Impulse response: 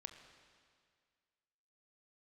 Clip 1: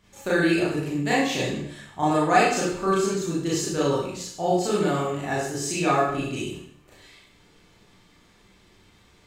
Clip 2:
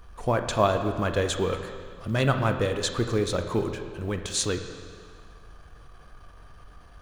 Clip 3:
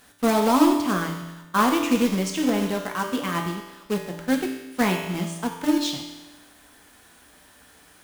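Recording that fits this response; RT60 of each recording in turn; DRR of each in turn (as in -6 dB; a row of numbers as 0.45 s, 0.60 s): 2; 0.65 s, 2.0 s, 1.1 s; -8.0 dB, 6.5 dB, 1.5 dB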